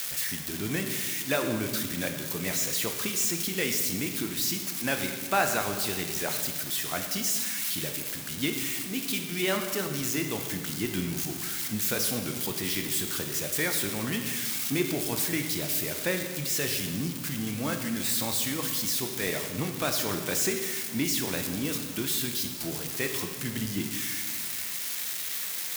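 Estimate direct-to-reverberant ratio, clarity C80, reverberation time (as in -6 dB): 4.5 dB, 7.5 dB, 1.7 s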